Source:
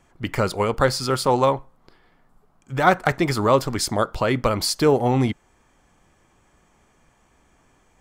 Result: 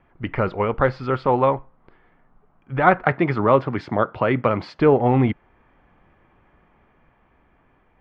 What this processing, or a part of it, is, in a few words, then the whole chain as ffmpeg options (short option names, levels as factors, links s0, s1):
action camera in a waterproof case: -filter_complex "[0:a]asettb=1/sr,asplit=3[s0][s1][s2];[s0]atrim=end=3.044[s3];[s1]atrim=start=3.04:end=4.79,asetpts=PTS-STARTPTS,afade=t=in:d=0.004:c=qsin,afade=t=out:st=1.746:d=0.004:c=qsin,highpass=f=96:w=0.5412,highpass=f=96:w=1.3066[s4];[s2]atrim=start=4.786[s5];[s3][s4]acrossfade=d=0.004:c1=hsin:c2=qsin[s6];[s6][s5]acrossfade=d=0.004:c1=qsin:c2=hsin,lowpass=f=2600:w=0.5412,lowpass=f=2600:w=1.3066,dynaudnorm=f=540:g=7:m=2.51" -ar 44100 -c:a aac -b:a 96k